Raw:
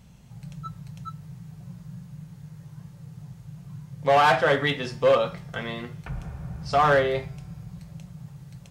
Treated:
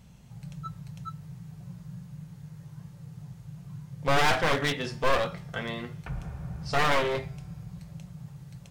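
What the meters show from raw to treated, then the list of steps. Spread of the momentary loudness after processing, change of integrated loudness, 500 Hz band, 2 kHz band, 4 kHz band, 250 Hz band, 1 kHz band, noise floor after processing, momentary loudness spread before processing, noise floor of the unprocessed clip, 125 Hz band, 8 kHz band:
20 LU, -6.0 dB, -7.0 dB, -2.5 dB, 0.0 dB, -2.0 dB, -5.5 dB, -50 dBFS, 23 LU, -48 dBFS, -2.0 dB, no reading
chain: one-sided wavefolder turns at -24 dBFS; trim -1.5 dB

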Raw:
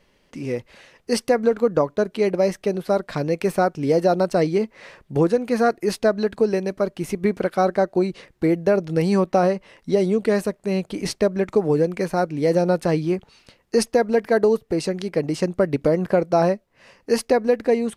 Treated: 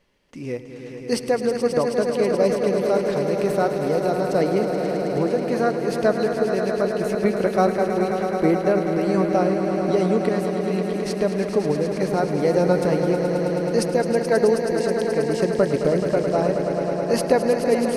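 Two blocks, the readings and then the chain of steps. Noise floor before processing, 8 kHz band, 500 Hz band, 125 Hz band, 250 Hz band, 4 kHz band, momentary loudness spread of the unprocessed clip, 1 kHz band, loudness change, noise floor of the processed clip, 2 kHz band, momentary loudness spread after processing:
-63 dBFS, -0.5 dB, +0.5 dB, 0.0 dB, 0.0 dB, -0.5 dB, 7 LU, 0.0 dB, 0.0 dB, -33 dBFS, +0.5 dB, 4 LU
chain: random-step tremolo 3.5 Hz; echo with a slow build-up 107 ms, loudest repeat 5, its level -9.5 dB

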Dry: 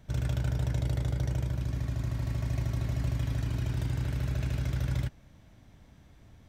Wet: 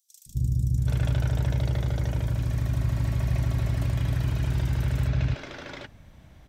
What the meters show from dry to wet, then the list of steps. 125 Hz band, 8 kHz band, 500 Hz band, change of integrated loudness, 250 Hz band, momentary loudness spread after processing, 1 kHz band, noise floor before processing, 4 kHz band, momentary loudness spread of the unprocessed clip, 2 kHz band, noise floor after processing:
+5.0 dB, +3.0 dB, +4.5 dB, +5.0 dB, +4.0 dB, 9 LU, +5.5 dB, -57 dBFS, +4.5 dB, 2 LU, +5.5 dB, -53 dBFS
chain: three bands offset in time highs, lows, mids 260/780 ms, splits 280/5900 Hz; trim +5.5 dB

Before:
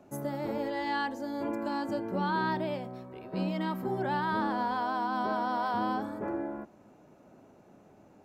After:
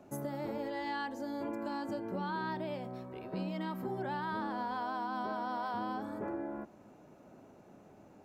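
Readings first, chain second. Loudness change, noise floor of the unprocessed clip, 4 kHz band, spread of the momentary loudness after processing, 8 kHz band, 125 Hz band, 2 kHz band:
-6.0 dB, -58 dBFS, -6.0 dB, 21 LU, no reading, -5.5 dB, -6.5 dB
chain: compression 2.5:1, threshold -37 dBFS, peak gain reduction 7.5 dB

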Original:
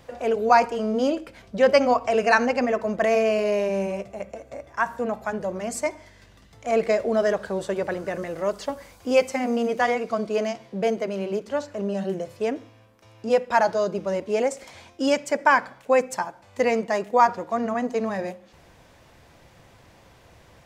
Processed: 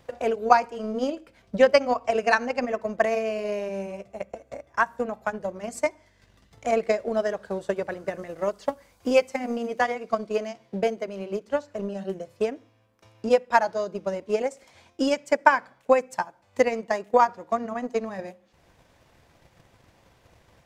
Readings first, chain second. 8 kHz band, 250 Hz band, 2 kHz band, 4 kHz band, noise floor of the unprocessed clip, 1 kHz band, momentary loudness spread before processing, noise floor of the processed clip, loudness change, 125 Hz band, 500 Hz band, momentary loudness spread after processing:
-4.5 dB, -3.5 dB, -1.5 dB, -2.5 dB, -54 dBFS, -1.5 dB, 12 LU, -62 dBFS, -2.0 dB, -4.5 dB, -2.0 dB, 13 LU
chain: transient shaper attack +10 dB, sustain -4 dB; trim -6.5 dB

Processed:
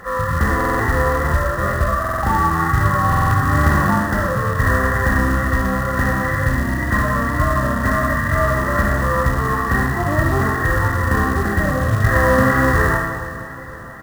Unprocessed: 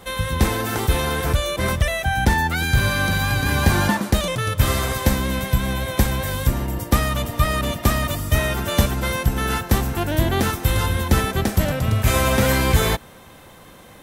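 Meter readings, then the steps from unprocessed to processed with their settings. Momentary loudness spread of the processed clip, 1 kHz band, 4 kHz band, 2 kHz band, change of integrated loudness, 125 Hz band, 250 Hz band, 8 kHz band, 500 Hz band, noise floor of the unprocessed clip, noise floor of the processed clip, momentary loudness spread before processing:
4 LU, +6.5 dB, -11.0 dB, +5.0 dB, +3.0 dB, +2.0 dB, +3.0 dB, -6.5 dB, +3.5 dB, -45 dBFS, -29 dBFS, 5 LU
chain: knee-point frequency compression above 1 kHz 4:1; in parallel at 0 dB: compression 12:1, threshold -24 dBFS, peak gain reduction 15.5 dB; on the sum: wow and flutter 27 cents; Schroeder reverb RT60 1.4 s, combs from 27 ms, DRR 1 dB; short-mantissa float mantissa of 2-bit; harmonic-percussive split percussive -10 dB; on a send: feedback delay 470 ms, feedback 54%, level -16.5 dB; on the sum: buffer glitch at 0.56/2.00/3.08 s, samples 2048, times 4; trim -1 dB

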